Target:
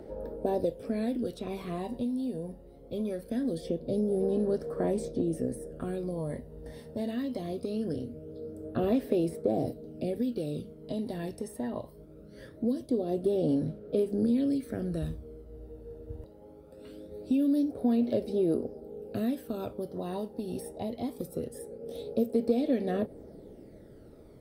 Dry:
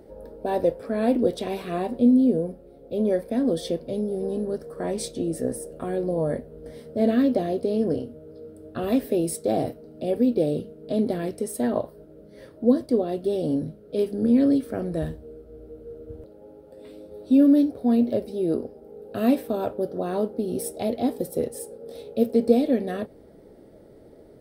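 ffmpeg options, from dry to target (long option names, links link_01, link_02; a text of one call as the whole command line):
ffmpeg -i in.wav -filter_complex "[0:a]acrossover=split=760|2300[link_01][link_02][link_03];[link_01]acompressor=threshold=-28dB:ratio=4[link_04];[link_02]acompressor=threshold=-49dB:ratio=4[link_05];[link_03]acompressor=threshold=-50dB:ratio=4[link_06];[link_04][link_05][link_06]amix=inputs=3:normalize=0,aphaser=in_gain=1:out_gain=1:delay=1.1:decay=0.48:speed=0.22:type=sinusoidal,volume=-2.5dB" out.wav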